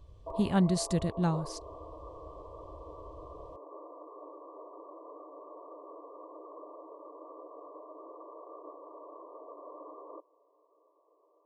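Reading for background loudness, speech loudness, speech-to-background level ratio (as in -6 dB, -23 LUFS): -47.0 LUFS, -30.5 LUFS, 16.5 dB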